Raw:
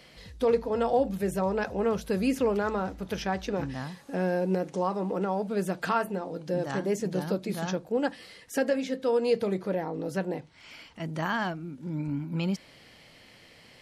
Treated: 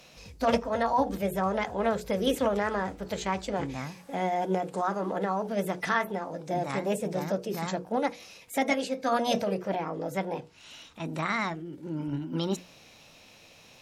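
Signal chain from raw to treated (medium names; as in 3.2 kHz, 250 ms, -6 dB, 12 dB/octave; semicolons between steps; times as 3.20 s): hum notches 60/120/180/240/300/360/420/480 Hz; formant shift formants +4 st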